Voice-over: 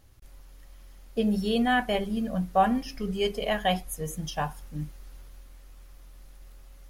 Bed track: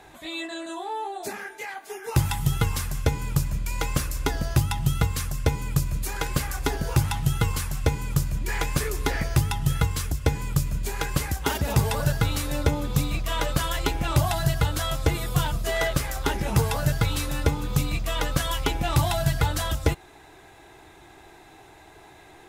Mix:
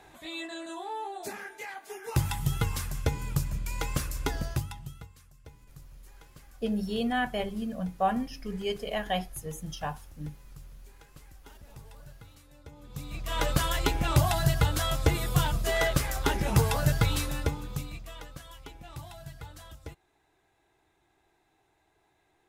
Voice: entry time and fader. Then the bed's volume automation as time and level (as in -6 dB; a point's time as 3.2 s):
5.45 s, -4.5 dB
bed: 4.43 s -5 dB
5.17 s -28 dB
12.63 s -28 dB
13.43 s -1.5 dB
17.14 s -1.5 dB
18.41 s -21 dB